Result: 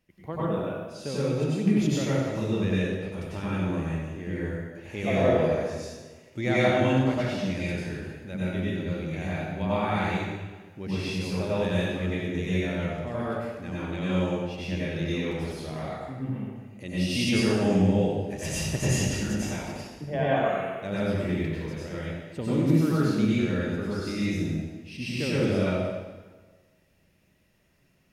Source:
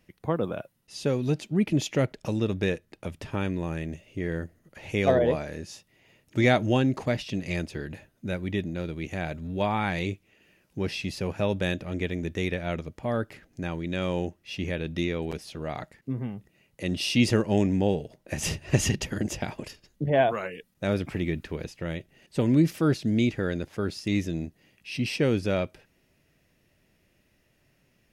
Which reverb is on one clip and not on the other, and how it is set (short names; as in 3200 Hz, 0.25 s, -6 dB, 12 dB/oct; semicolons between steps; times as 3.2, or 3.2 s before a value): plate-style reverb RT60 1.4 s, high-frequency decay 0.8×, pre-delay 80 ms, DRR -9 dB; gain -9 dB